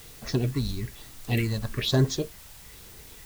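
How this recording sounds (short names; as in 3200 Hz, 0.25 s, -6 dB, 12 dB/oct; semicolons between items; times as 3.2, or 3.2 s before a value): phasing stages 4, 1.1 Hz, lowest notch 360–3100 Hz; a quantiser's noise floor 8-bit, dither triangular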